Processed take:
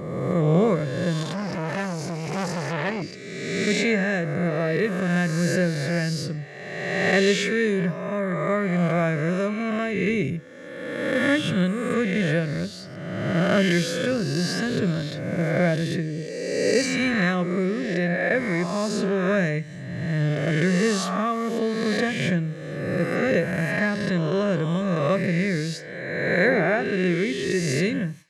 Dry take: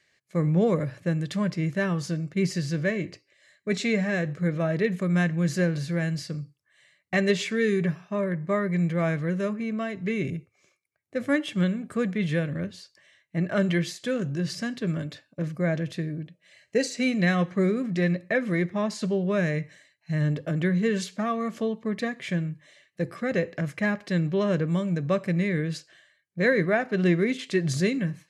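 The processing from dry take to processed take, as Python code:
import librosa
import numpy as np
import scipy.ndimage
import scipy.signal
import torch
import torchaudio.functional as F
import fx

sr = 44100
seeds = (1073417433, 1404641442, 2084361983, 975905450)

y = fx.spec_swells(x, sr, rise_s=1.64)
y = fx.rider(y, sr, range_db=4, speed_s=2.0)
y = fx.transformer_sat(y, sr, knee_hz=1300.0, at=(1.23, 3.02))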